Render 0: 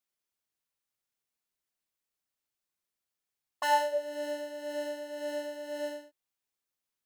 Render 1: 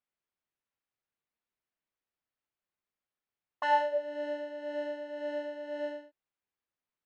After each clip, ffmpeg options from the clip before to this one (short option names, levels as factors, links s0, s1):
-af "lowpass=2600"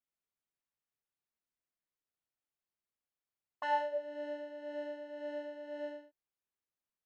-af "lowshelf=f=420:g=3,volume=0.473"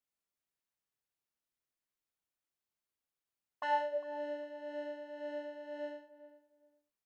-filter_complex "[0:a]asplit=2[s0][s1];[s1]adelay=404,lowpass=f=1200:p=1,volume=0.2,asplit=2[s2][s3];[s3]adelay=404,lowpass=f=1200:p=1,volume=0.22[s4];[s0][s2][s4]amix=inputs=3:normalize=0"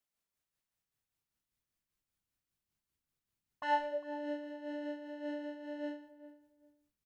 -filter_complex "[0:a]asplit=2[s0][s1];[s1]adelay=100,highpass=300,lowpass=3400,asoftclip=type=hard:threshold=0.0335,volume=0.0708[s2];[s0][s2]amix=inputs=2:normalize=0,asubboost=boost=6:cutoff=240,tremolo=f=5.1:d=0.42,volume=1.5"